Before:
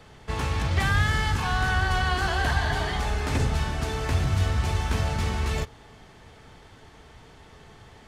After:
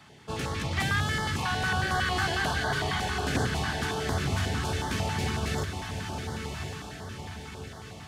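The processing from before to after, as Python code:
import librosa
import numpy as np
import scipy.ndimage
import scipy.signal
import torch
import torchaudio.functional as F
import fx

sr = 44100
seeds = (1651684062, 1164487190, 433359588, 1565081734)

y = scipy.signal.sosfilt(scipy.signal.butter(2, 130.0, 'highpass', fs=sr, output='sos'), x)
y = fx.echo_diffused(y, sr, ms=1115, feedback_pct=52, wet_db=-5.5)
y = fx.filter_held_notch(y, sr, hz=11.0, low_hz=480.0, high_hz=2500.0)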